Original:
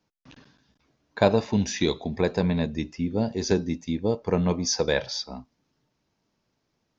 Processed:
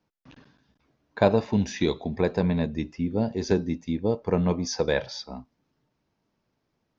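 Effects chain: treble shelf 4.4 kHz -10.5 dB

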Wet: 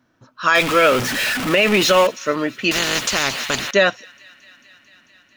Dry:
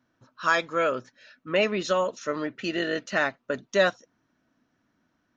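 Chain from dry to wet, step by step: 0.55–2.07 s: jump at every zero crossing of -26.5 dBFS; dynamic bell 2.6 kHz, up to +8 dB, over -42 dBFS, Q 1.6; peak limiter -13.5 dBFS, peak gain reduction 7.5 dB; on a send: feedback echo behind a high-pass 222 ms, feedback 81%, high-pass 1.8 kHz, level -24 dB; 2.71–3.71 s: on the sum: spectrum-flattening compressor 4:1; trim +8.5 dB

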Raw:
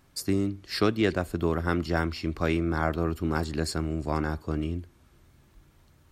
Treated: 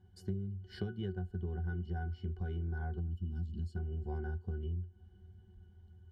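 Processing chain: bass shelf 150 Hz +10 dB; time-frequency box 3.00–3.76 s, 360–2600 Hz -18 dB; treble shelf 4.6 kHz +11.5 dB; pitch-class resonator F#, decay 0.12 s; compression 6:1, threshold -38 dBFS, peak gain reduction 15.5 dB; trim +2.5 dB

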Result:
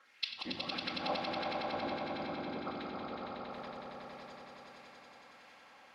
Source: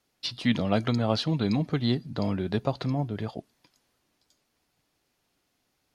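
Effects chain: whisper effect; inverted gate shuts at -28 dBFS, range -24 dB; LFO band-pass sine 1.5 Hz 730–2300 Hz; echo with a slow build-up 92 ms, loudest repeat 5, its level -5 dB; simulated room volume 2800 m³, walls furnished, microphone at 2.2 m; trim +18 dB

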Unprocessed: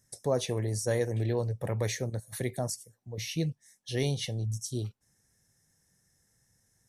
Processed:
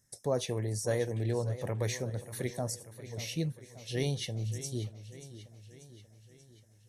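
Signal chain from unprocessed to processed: modulated delay 586 ms, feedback 56%, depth 83 cents, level -14 dB; trim -2.5 dB

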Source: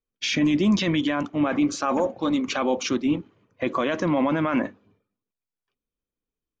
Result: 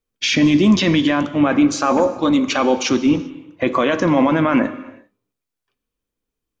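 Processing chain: gated-style reverb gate 430 ms falling, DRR 11.5 dB; trim +7 dB

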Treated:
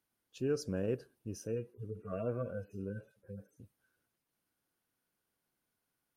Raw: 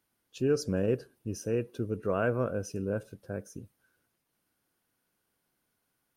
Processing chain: 1.47–3.60 s: harmonic-percussive separation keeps harmonic; trim -6.5 dB

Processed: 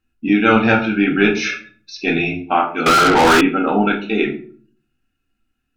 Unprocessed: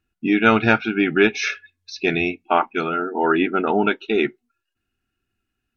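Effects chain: simulated room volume 380 m³, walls furnished, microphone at 2.1 m; 2.86–3.41 s: overdrive pedal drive 34 dB, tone 5.8 kHz, clips at -4.5 dBFS; trim -1 dB

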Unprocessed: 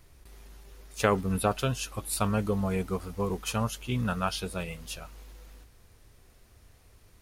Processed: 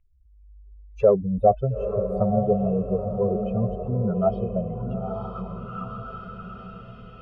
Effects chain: spectral contrast enhancement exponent 2.9; level rider gain up to 10 dB; saturation -6.5 dBFS, distortion -24 dB; on a send: echo that smears into a reverb 910 ms, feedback 52%, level -6 dB; on the sum: touch-sensitive low-pass 650–2400 Hz down, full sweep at -20 dBFS; trim -6 dB

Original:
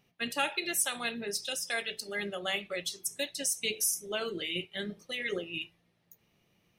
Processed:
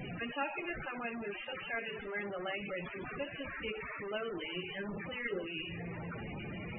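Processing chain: one-bit delta coder 16 kbps, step -30.5 dBFS; thinning echo 232 ms, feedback 73%, high-pass 160 Hz, level -20.5 dB; loudest bins only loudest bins 32; trim -3.5 dB

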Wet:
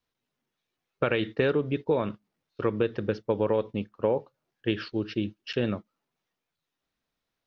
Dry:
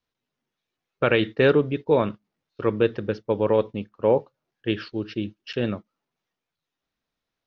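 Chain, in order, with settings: compression 6:1, threshold -21 dBFS, peak gain reduction 8 dB

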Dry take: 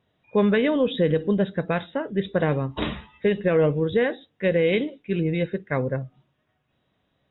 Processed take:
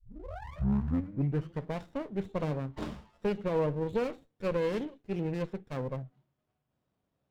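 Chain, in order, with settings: tape start-up on the opening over 1.78 s; harmonic-percussive split percussive -3 dB; sliding maximum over 17 samples; trim -8 dB

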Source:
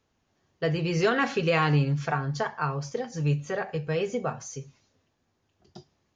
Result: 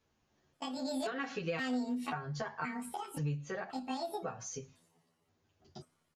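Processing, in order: pitch shift switched off and on +9 st, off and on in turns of 528 ms; compression 6:1, threshold -32 dBFS, peak gain reduction 12.5 dB; endless flanger 10.6 ms -0.34 Hz

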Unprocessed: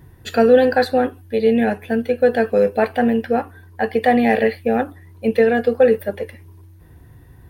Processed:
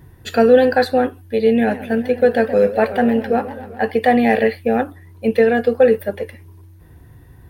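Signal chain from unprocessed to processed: 1.55–3.91 s: modulated delay 130 ms, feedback 70%, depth 206 cents, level -15 dB; trim +1 dB

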